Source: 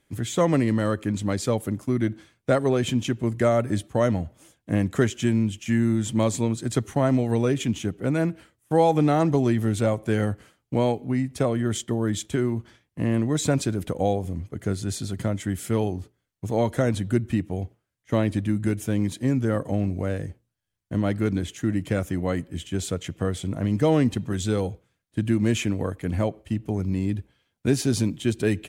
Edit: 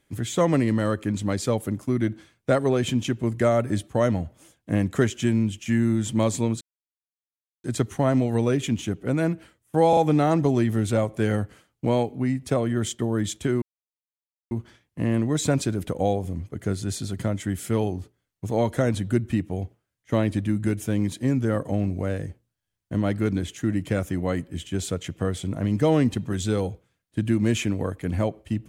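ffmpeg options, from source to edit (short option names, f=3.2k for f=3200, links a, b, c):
-filter_complex "[0:a]asplit=5[a][b][c][d][e];[a]atrim=end=6.61,asetpts=PTS-STARTPTS,afade=t=out:st=6.606:d=0.004:c=hsin,apad=pad_dur=1.03[f];[b]atrim=start=6.61:end=8.902,asetpts=PTS-STARTPTS,afade=t=in:d=0.004:c=hsin[g];[c]atrim=start=8.858:end=8.902[h];[d]atrim=start=8.858:end=12.51,asetpts=PTS-STARTPTS,afade=t=out:st=3.648:d=0.004:c=hsin,apad=pad_dur=0.89[i];[e]atrim=start=12.51,asetpts=PTS-STARTPTS,afade=t=in:d=0.004:c=hsin[j];[f][g]concat=n=2:v=0:a=1[k];[k][h]acrossfade=d=0.004:c1=hsin:c2=hsin[l];[i][j]concat=n=2:v=0:a=1[m];[l][m]acrossfade=d=0.004:c1=hsin:c2=hsin"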